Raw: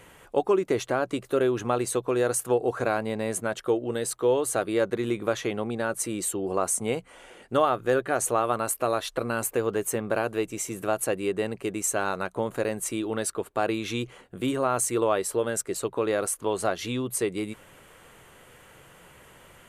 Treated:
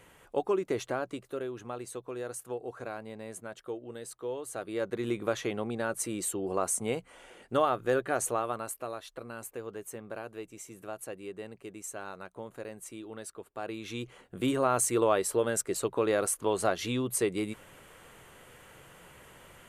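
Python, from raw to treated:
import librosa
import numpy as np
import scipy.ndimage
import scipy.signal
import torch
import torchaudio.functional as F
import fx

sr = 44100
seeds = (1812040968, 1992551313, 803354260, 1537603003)

y = fx.gain(x, sr, db=fx.line((0.9, -6.0), (1.47, -13.5), (4.45, -13.5), (5.09, -4.0), (8.18, -4.0), (9.01, -14.0), (13.49, -14.0), (14.44, -1.5)))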